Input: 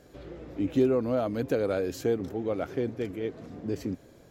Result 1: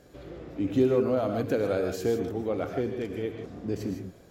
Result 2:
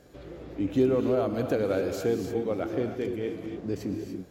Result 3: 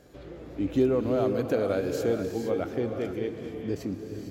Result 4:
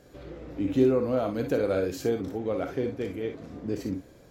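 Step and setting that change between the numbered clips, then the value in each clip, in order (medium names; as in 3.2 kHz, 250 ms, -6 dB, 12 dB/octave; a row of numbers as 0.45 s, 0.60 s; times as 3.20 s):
gated-style reverb, gate: 180 ms, 320 ms, 490 ms, 80 ms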